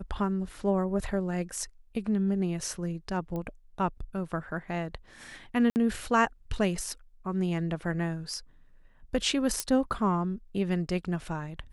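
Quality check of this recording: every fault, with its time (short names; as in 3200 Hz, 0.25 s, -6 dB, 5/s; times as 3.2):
3.36 pop -24 dBFS
5.7–5.76 gap 59 ms
9.6 pop -12 dBFS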